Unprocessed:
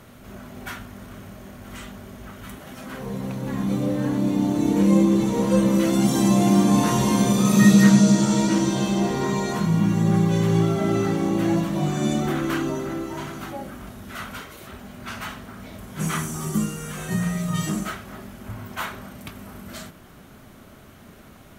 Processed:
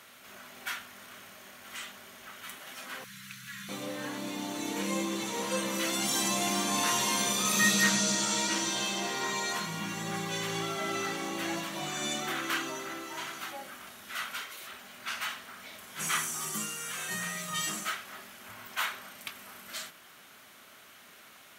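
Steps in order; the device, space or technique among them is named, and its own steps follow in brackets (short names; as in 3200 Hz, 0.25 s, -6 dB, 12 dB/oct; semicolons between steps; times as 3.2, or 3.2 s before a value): 3.04–3.69 elliptic band-stop 180–1400 Hz, stop band 40 dB; filter by subtraction (in parallel: LPF 2600 Hz 12 dB/oct + phase invert)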